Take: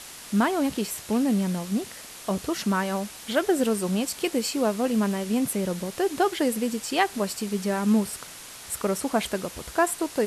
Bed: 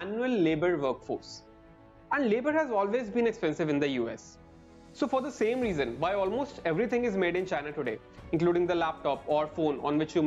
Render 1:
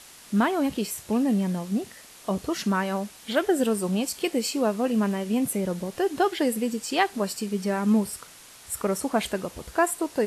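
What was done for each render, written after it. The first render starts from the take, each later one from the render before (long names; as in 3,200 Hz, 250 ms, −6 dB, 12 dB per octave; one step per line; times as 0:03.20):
noise reduction from a noise print 6 dB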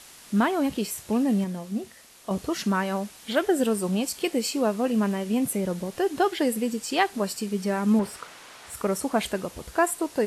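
0:01.44–0:02.31: tuned comb filter 75 Hz, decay 0.16 s, harmonics odd, mix 50%
0:07.99–0:08.75: mid-hump overdrive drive 17 dB, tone 1,300 Hz, clips at −15 dBFS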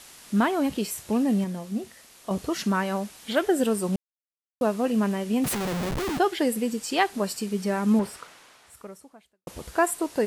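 0:03.96–0:04.61: silence
0:05.44–0:06.18: comparator with hysteresis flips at −39.5 dBFS
0:08.00–0:09.47: fade out quadratic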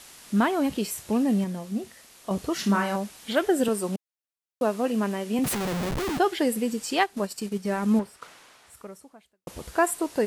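0:02.54–0:02.96: flutter between parallel walls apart 5.1 metres, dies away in 0.29 s
0:03.68–0:05.39: high-pass filter 210 Hz
0:06.99–0:08.22: transient designer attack −3 dB, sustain −10 dB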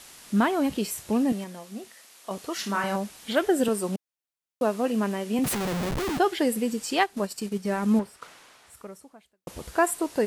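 0:01.32–0:02.84: high-pass filter 580 Hz 6 dB per octave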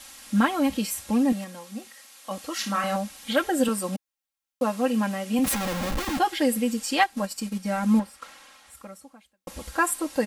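parametric band 370 Hz −5 dB 1.3 octaves
comb filter 3.7 ms, depth 92%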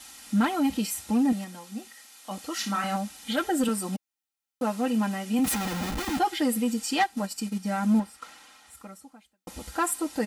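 soft clipping −14.5 dBFS, distortion −19 dB
notch comb filter 550 Hz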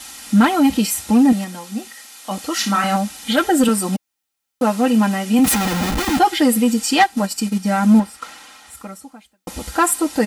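level +10.5 dB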